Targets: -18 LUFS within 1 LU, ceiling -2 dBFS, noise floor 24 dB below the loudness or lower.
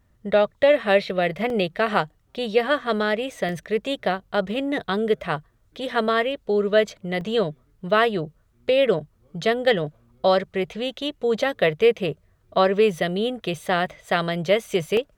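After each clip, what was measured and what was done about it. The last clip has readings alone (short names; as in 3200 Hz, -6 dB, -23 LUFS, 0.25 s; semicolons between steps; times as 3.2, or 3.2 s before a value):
dropouts 4; longest dropout 1.8 ms; loudness -23.0 LUFS; peak -6.0 dBFS; loudness target -18.0 LUFS
-> interpolate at 1.5/3.49/7.21/14.97, 1.8 ms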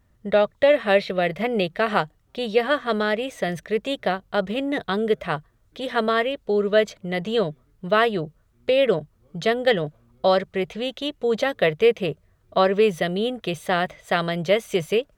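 dropouts 0; loudness -23.0 LUFS; peak -6.0 dBFS; loudness target -18.0 LUFS
-> gain +5 dB; limiter -2 dBFS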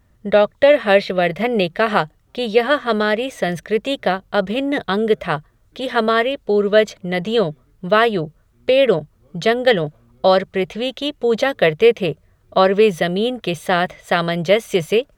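loudness -18.0 LUFS; peak -2.0 dBFS; noise floor -57 dBFS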